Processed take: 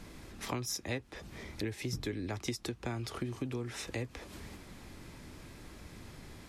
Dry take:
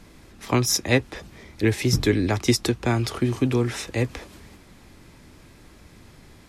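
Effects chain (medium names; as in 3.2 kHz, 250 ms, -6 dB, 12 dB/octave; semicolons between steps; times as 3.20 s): compression 4:1, threshold -36 dBFS, peak gain reduction 18.5 dB; trim -1 dB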